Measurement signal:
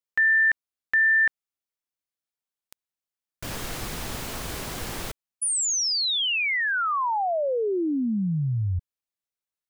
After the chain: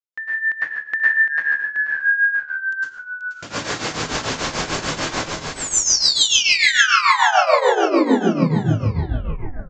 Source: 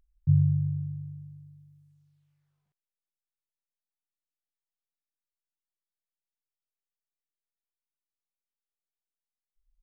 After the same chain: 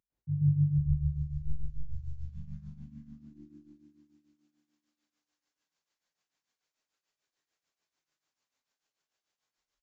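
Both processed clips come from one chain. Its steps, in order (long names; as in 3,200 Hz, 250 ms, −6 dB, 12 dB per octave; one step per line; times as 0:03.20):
automatic gain control gain up to 12.5 dB
high-pass filter 150 Hz 12 dB per octave
hum removal 196.7 Hz, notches 27
echo with shifted repeats 483 ms, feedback 47%, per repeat −74 Hz, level −4 dB
dense smooth reverb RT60 0.57 s, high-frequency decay 0.9×, pre-delay 95 ms, DRR −9 dB
in parallel at −1.5 dB: downward compressor, threshold −10 dBFS
on the sum: downsampling to 16,000 Hz
shaped tremolo triangle 6.8 Hz, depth 80%
level −12 dB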